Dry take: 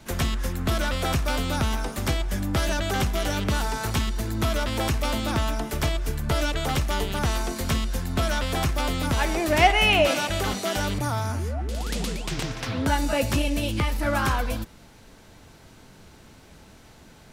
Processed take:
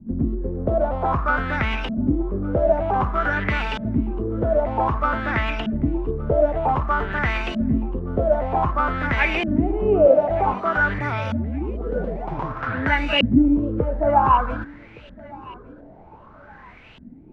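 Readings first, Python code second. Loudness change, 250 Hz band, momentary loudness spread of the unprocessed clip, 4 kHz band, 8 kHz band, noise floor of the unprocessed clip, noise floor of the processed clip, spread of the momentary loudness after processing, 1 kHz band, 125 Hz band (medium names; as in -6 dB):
+3.5 dB, +6.0 dB, 7 LU, -4.5 dB, under -20 dB, -50 dBFS, -45 dBFS, 10 LU, +5.5 dB, +0.5 dB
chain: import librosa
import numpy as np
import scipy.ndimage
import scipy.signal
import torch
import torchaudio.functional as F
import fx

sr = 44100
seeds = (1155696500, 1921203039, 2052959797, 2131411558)

y = fx.filter_lfo_lowpass(x, sr, shape='saw_up', hz=0.53, low_hz=210.0, high_hz=3000.0, q=7.0)
y = fx.vibrato(y, sr, rate_hz=6.6, depth_cents=13.0)
y = fx.echo_feedback(y, sr, ms=1166, feedback_pct=37, wet_db=-23)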